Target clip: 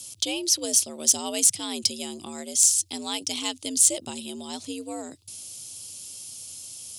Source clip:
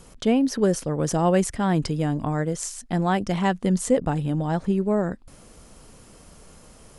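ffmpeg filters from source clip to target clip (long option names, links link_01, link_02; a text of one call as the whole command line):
ffmpeg -i in.wav -af "afreqshift=78,aexciter=amount=10:drive=9.2:freq=2700,volume=-13dB" out.wav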